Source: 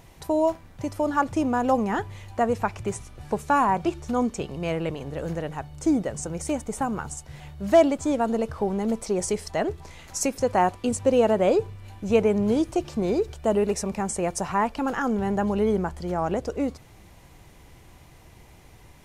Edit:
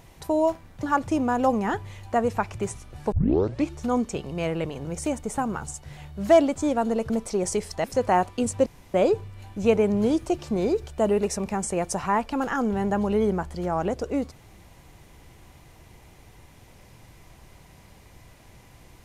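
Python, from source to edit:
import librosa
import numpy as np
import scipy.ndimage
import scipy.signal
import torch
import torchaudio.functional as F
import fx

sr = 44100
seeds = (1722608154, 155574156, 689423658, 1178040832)

y = fx.edit(x, sr, fx.cut(start_s=0.83, length_s=0.25),
    fx.tape_start(start_s=3.37, length_s=0.58),
    fx.cut(start_s=5.1, length_s=1.18),
    fx.cut(start_s=8.53, length_s=0.33),
    fx.cut(start_s=9.6, length_s=0.7),
    fx.room_tone_fill(start_s=11.12, length_s=0.28), tone=tone)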